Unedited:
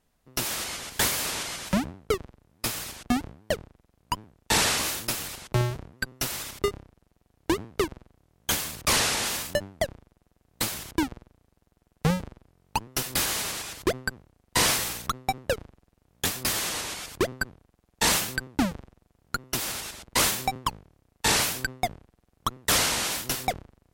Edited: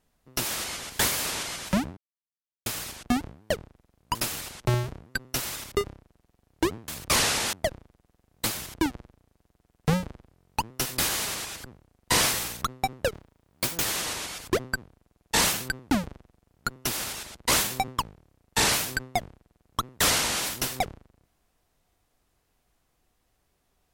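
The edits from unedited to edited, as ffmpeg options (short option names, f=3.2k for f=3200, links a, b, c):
-filter_complex "[0:a]asplit=9[a][b][c][d][e][f][g][h][i];[a]atrim=end=1.97,asetpts=PTS-STARTPTS,afade=t=out:st=1.966:d=0.004:c=hsin[j];[b]atrim=start=1.97:end=2.66,asetpts=PTS-STARTPTS,volume=0[k];[c]atrim=start=2.66:end=4.152,asetpts=PTS-STARTPTS,afade=t=in:d=0.004:c=hsin[l];[d]atrim=start=5.018:end=7.752[m];[e]atrim=start=8.648:end=9.302[n];[f]atrim=start=9.698:end=13.812[o];[g]atrim=start=14.088:end=15.584[p];[h]atrim=start=15.58:end=16.52,asetpts=PTS-STARTPTS,asetrate=58212,aresample=44100[q];[i]atrim=start=16.516[r];[j][k][l]concat=n=3:v=0:a=1[s];[s][m]acrossfade=d=0.004:c1=hsin:c2=hsin[t];[t][n]acrossfade=d=0.004:c1=hsin:c2=hsin[u];[u][o]acrossfade=d=0.004:c1=hsin:c2=hsin[v];[v][p]acrossfade=d=0.004:c1=hsin:c2=hsin[w];[w][q]acrossfade=d=0.004:c1=hsin:c2=hsin[x];[x][r]acrossfade=d=0.004:c1=hsin:c2=hsin"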